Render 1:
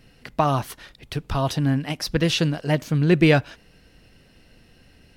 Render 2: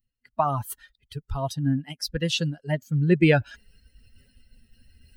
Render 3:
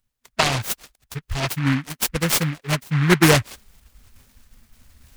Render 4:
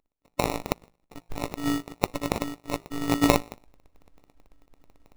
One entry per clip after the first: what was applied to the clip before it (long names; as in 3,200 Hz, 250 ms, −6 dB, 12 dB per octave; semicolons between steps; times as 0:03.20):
spectral dynamics exaggerated over time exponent 2; reversed playback; upward compression, threshold −28 dBFS; reversed playback
high-shelf EQ 5,100 Hz +10.5 dB; short delay modulated by noise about 1,600 Hz, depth 0.24 ms; level +3.5 dB
hum removal 180.5 Hz, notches 25; phases set to zero 286 Hz; sample-rate reduction 1,600 Hz, jitter 0%; level −4 dB